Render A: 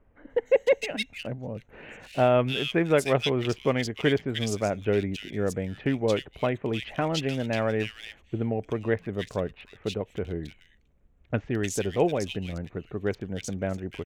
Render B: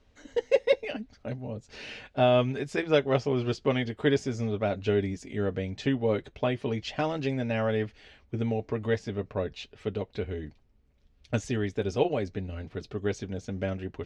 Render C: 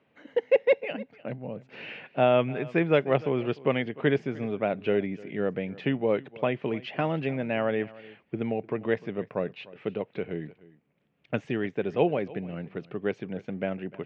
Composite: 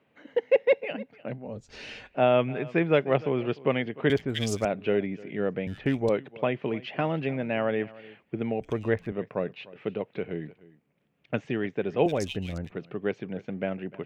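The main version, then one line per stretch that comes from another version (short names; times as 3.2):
C
1.49–2.12 from B, crossfade 0.24 s
4.1–4.65 from A
5.67–6.09 from A
8.61–9.12 from A
12.06–12.72 from A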